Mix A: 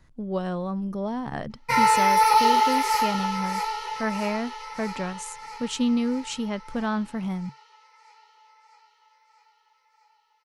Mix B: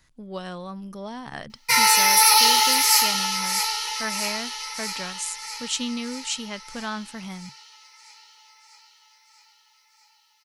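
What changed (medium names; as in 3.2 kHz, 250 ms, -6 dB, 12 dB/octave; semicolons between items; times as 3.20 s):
background: add treble shelf 3.4 kHz +11.5 dB; master: add tilt shelf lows -8 dB, about 1.5 kHz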